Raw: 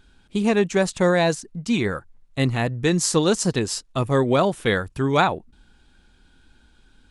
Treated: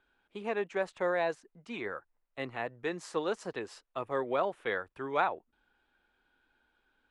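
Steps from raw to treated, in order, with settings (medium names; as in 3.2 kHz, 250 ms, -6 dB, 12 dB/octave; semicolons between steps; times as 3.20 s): three-band isolator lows -19 dB, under 370 Hz, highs -19 dB, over 2.8 kHz; trim -9 dB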